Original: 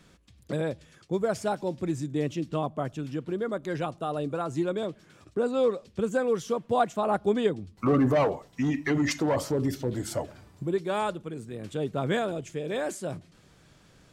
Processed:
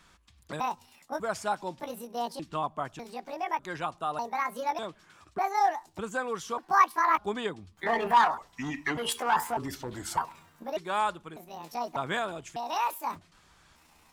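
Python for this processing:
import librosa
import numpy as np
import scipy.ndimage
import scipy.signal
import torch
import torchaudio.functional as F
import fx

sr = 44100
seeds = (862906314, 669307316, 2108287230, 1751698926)

y = fx.pitch_trill(x, sr, semitones=8.0, every_ms=598)
y = fx.graphic_eq_10(y, sr, hz=(125, 250, 500, 1000), db=(-10, -6, -9, 7))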